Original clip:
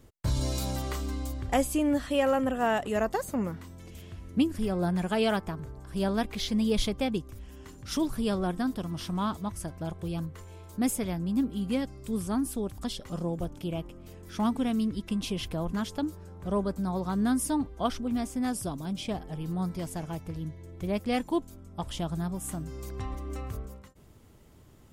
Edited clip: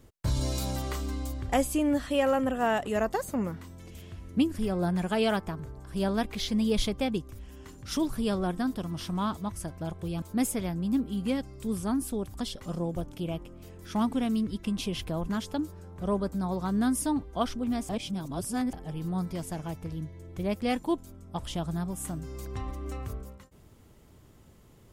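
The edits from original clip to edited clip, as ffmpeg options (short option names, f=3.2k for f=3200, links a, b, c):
-filter_complex "[0:a]asplit=4[a][b][c][d];[a]atrim=end=10.222[e];[b]atrim=start=10.658:end=18.332[f];[c]atrim=start=18.328:end=19.172,asetpts=PTS-STARTPTS,areverse[g];[d]atrim=start=19.168[h];[e][f]acrossfade=d=0.004:c1=hsin:c2=hsin[i];[i][g]acrossfade=d=0.004:c1=hsin:c2=hsin[j];[j][h]acrossfade=d=0.004:c1=hsin:c2=hsin"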